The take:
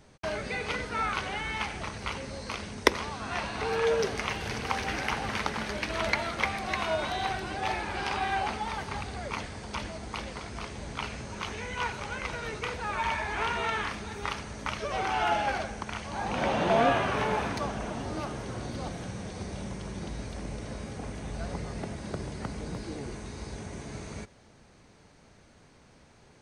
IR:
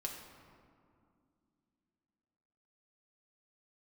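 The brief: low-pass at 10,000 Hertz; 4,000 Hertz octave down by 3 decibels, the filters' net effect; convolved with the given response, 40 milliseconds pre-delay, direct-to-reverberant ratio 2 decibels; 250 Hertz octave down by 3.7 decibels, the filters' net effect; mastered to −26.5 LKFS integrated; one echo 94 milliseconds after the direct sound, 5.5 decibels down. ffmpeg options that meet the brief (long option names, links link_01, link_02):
-filter_complex "[0:a]lowpass=10000,equalizer=frequency=250:width_type=o:gain=-5,equalizer=frequency=4000:width_type=o:gain=-4,aecho=1:1:94:0.531,asplit=2[link_01][link_02];[1:a]atrim=start_sample=2205,adelay=40[link_03];[link_02][link_03]afir=irnorm=-1:irlink=0,volume=-1.5dB[link_04];[link_01][link_04]amix=inputs=2:normalize=0,volume=3.5dB"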